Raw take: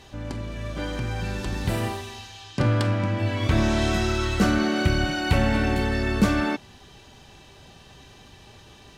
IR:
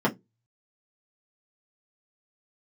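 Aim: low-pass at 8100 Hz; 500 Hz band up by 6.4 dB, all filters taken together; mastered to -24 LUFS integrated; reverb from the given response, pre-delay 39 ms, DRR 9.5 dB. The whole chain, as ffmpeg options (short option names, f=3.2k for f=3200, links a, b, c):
-filter_complex "[0:a]lowpass=8.1k,equalizer=f=500:t=o:g=8.5,asplit=2[a][b];[1:a]atrim=start_sample=2205,adelay=39[c];[b][c]afir=irnorm=-1:irlink=0,volume=-23dB[d];[a][d]amix=inputs=2:normalize=0,volume=-2.5dB"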